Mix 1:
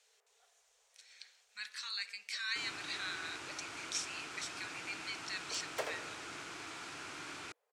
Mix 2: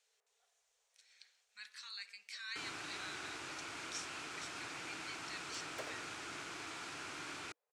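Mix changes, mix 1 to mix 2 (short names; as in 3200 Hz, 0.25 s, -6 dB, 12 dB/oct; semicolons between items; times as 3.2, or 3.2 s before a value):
speech -7.5 dB; second sound -8.5 dB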